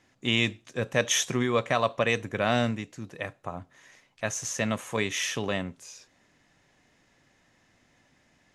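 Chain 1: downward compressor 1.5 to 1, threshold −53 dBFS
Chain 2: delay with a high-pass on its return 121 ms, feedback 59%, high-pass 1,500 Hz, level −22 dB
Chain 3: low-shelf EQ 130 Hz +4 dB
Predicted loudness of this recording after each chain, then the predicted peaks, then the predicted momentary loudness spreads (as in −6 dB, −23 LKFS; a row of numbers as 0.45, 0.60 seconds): −39.0, −28.0, −28.0 LKFS; −20.0, −8.5, −8.0 dBFS; 14, 15, 14 LU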